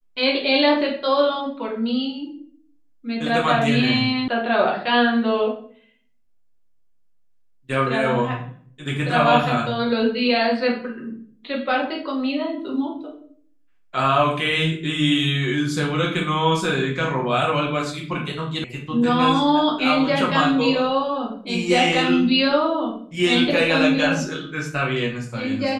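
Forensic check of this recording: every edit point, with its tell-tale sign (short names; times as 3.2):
4.28 sound cut off
18.64 sound cut off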